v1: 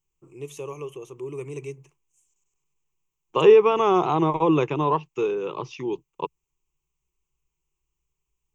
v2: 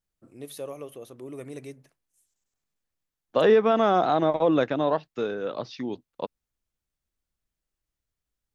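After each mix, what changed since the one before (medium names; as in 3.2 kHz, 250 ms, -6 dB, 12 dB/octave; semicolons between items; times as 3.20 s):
master: remove rippled EQ curve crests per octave 0.72, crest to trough 17 dB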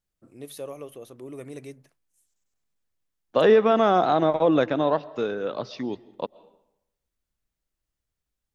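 reverb: on, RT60 0.85 s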